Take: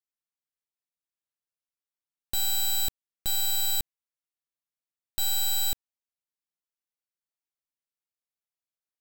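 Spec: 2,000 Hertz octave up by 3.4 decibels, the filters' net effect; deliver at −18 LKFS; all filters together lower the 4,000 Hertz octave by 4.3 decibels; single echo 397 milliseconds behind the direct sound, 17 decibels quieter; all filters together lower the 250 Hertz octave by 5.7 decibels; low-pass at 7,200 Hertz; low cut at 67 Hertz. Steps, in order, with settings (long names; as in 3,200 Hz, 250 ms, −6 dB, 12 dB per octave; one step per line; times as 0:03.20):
high-pass filter 67 Hz
low-pass filter 7,200 Hz
parametric band 250 Hz −8.5 dB
parametric band 2,000 Hz +6.5 dB
parametric band 4,000 Hz −5.5 dB
single-tap delay 397 ms −17 dB
level +16 dB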